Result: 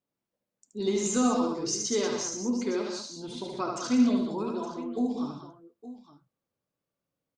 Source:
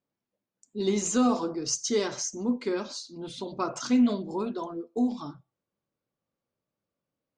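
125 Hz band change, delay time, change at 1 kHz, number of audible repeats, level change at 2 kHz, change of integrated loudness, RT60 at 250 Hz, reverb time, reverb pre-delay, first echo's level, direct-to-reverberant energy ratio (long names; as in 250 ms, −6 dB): −1.0 dB, 75 ms, 0.0 dB, 4, −0.5 dB, −0.5 dB, no reverb audible, no reverb audible, no reverb audible, −4.0 dB, no reverb audible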